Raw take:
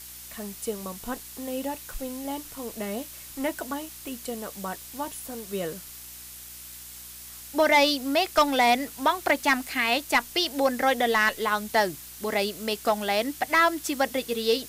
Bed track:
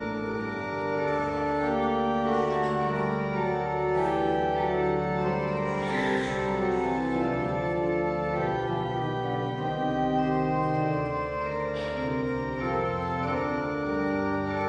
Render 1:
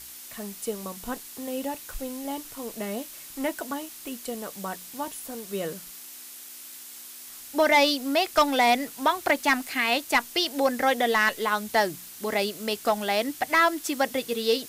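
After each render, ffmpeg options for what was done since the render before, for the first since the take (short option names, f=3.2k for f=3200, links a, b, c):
-af "bandreject=f=60:t=h:w=4,bandreject=f=120:t=h:w=4,bandreject=f=180:t=h:w=4"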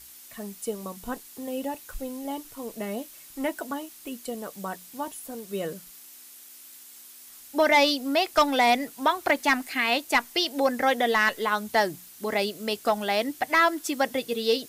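-af "afftdn=nr=6:nf=-43"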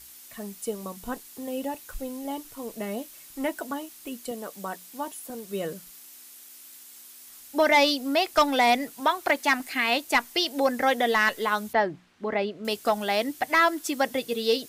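-filter_complex "[0:a]asettb=1/sr,asplit=3[a][b][c];[a]atrim=end=4.314[d];[b]atrim=start=4.31:end=5.3,asetpts=PTS-STARTPTS,afade=t=in:d=0.004:c=qsin,afade=t=out:st=0.986:d=0.004:c=qsin,highpass=190[e];[c]atrim=start=5.296[f];[d][e]acrossfade=d=0.004:c1=hsin:c2=qsin[g];[g][f]acrossfade=d=0.004:c1=qsin:c2=hsin,asettb=1/sr,asplit=3[h][i][j];[h]atrim=end=9.004[k];[i]atrim=start=9:end=9.6,asetpts=PTS-STARTPTS,afade=t=in:d=0.004:c=qsin,afade=t=out:st=0.596:d=0.004:c=qsin,lowshelf=f=180:g=-9[l];[j]atrim=start=9.596[m];[k][l]acrossfade=d=0.004:c1=hsin:c2=qsin[n];[n][m]acrossfade=d=0.004:c1=qsin:c2=hsin,asettb=1/sr,asplit=3[o][p][q];[o]atrim=end=11.734[r];[p]atrim=start=11.73:end=12.65,asetpts=PTS-STARTPTS,afade=t=in:d=0.004:c=qsin,afade=t=out:st=0.916:d=0.004:c=qsin,lowpass=2.2k[s];[q]atrim=start=12.646[t];[r][s]acrossfade=d=0.004:c1=hsin:c2=qsin[u];[u][t]acrossfade=d=0.004:c1=qsin:c2=hsin"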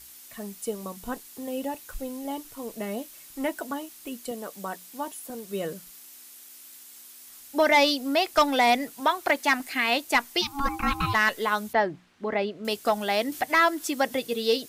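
-filter_complex "[0:a]asplit=3[a][b][c];[a]afade=t=out:st=10.41:d=0.02[d];[b]aeval=exprs='val(0)*sin(2*PI*560*n/s)':c=same,afade=t=in:st=10.41:d=0.02,afade=t=out:st=11.13:d=0.02[e];[c]afade=t=in:st=11.13:d=0.02[f];[d][e][f]amix=inputs=3:normalize=0,asettb=1/sr,asplit=3[g][h][i];[g]atrim=end=13.324[j];[h]atrim=start=13.32:end=14.27,asetpts=PTS-STARTPTS,afade=t=in:d=0.004:c=qsin,afade=t=out:st=0.946:d=0.004:c=qsin,acompressor=mode=upward:threshold=-30dB:ratio=2.5:attack=3.2:release=140:knee=2.83:detection=peak[k];[i]atrim=start=14.266[l];[j][k]acrossfade=d=0.004:c1=hsin:c2=qsin[m];[m][l]acrossfade=d=0.004:c1=qsin:c2=hsin"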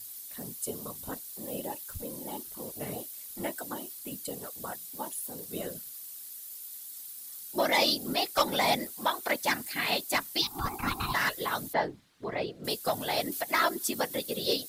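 -af "afftfilt=real='hypot(re,im)*cos(2*PI*random(0))':imag='hypot(re,im)*sin(2*PI*random(1))':win_size=512:overlap=0.75,aexciter=amount=2.2:drive=4.7:freq=3.6k"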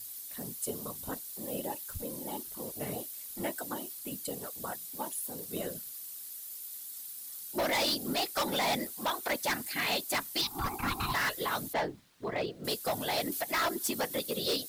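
-af "acrusher=bits=10:mix=0:aa=0.000001,asoftclip=type=hard:threshold=-26.5dB"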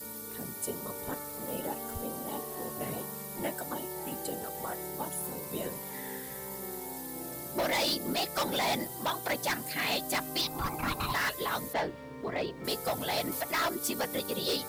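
-filter_complex "[1:a]volume=-16dB[a];[0:a][a]amix=inputs=2:normalize=0"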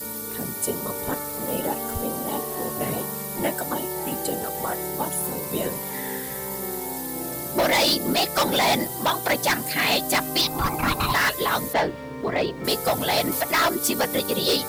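-af "volume=9.5dB"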